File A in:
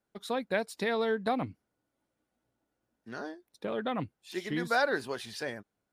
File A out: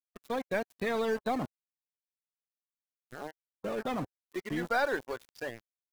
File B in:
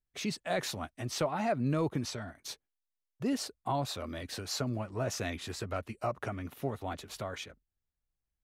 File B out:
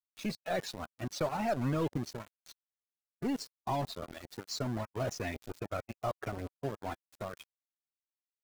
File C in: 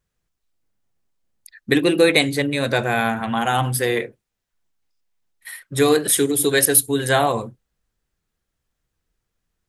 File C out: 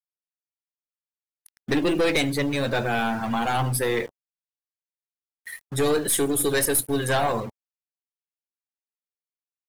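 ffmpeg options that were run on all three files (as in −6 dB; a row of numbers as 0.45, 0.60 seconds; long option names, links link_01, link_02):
-af "aeval=exprs='(tanh(7.94*val(0)+0.3)-tanh(0.3))/7.94':channel_layout=same,acrusher=bits=5:mix=0:aa=0.000001,afftdn=noise_reduction=13:noise_floor=-38"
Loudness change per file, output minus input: −1.0, −1.5, −5.0 LU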